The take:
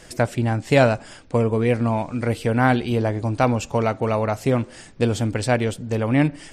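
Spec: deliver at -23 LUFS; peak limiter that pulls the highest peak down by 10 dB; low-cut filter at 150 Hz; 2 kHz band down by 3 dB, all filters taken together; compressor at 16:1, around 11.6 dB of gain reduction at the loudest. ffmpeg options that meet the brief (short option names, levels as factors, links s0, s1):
-af "highpass=150,equalizer=f=2000:t=o:g=-4,acompressor=threshold=0.0794:ratio=16,volume=2.82,alimiter=limit=0.282:level=0:latency=1"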